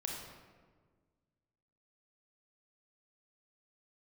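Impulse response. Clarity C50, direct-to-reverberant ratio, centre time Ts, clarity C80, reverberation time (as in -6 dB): 1.5 dB, -1.0 dB, 69 ms, 3.5 dB, 1.6 s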